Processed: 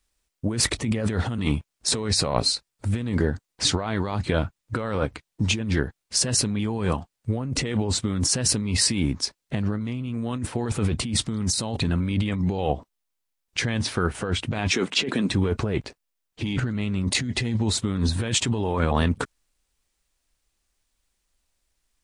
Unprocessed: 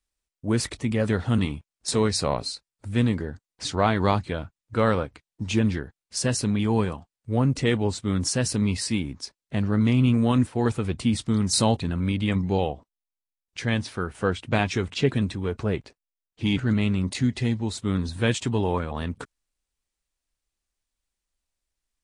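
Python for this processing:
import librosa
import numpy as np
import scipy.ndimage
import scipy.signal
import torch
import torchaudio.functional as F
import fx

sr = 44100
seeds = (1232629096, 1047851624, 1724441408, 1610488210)

y = fx.highpass(x, sr, hz=200.0, slope=24, at=(14.71, 15.3))
y = fx.over_compress(y, sr, threshold_db=-29.0, ratio=-1.0)
y = y * 10.0 ** (4.5 / 20.0)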